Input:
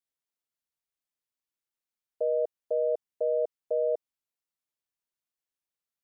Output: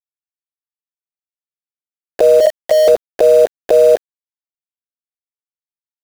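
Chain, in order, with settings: 2.40–2.88 s: FFT filter 170 Hz 0 dB, 260 Hz -30 dB, 410 Hz -20 dB, 620 Hz +10 dB, 890 Hz -16 dB, 1.4 kHz -28 dB, 2.2 kHz +5 dB, 3.2 kHz -3 dB; harmonic-percussive split harmonic -6 dB; bass shelf 440 Hz +6 dB; compressor with a negative ratio -39 dBFS, ratio -1; small samples zeroed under -50.5 dBFS; loudness maximiser +35.5 dB; trim -1 dB

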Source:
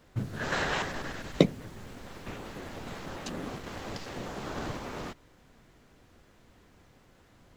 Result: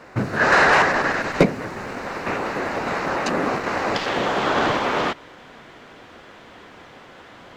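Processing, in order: treble shelf 4.8 kHz -12 dB; overdrive pedal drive 27 dB, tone 4.4 kHz, clips at -4.5 dBFS; peaking EQ 3.3 kHz -11 dB 0.32 oct, from 3.95 s +3.5 dB; trim +1.5 dB

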